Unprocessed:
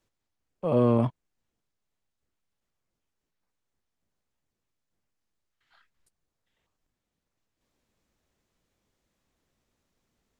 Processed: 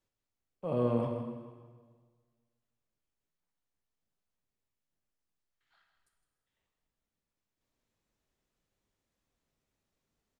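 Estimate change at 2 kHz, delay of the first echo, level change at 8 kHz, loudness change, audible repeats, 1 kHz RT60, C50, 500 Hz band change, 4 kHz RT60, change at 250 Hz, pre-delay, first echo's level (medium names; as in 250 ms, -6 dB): -7.0 dB, 159 ms, no reading, -8.0 dB, 1, 1.6 s, 4.5 dB, -6.0 dB, 1.5 s, -7.5 dB, 5 ms, -11.5 dB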